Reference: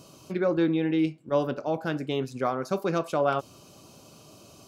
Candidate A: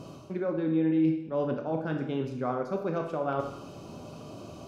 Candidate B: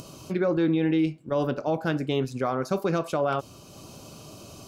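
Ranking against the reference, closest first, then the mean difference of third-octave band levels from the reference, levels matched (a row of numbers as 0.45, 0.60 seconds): B, A; 2.5, 6.0 decibels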